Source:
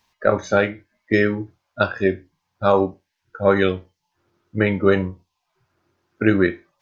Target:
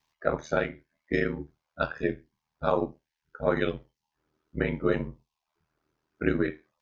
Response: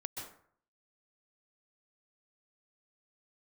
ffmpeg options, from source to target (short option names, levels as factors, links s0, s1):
-af "aeval=exprs='val(0)*sin(2*PI*39*n/s)':c=same,volume=0.473"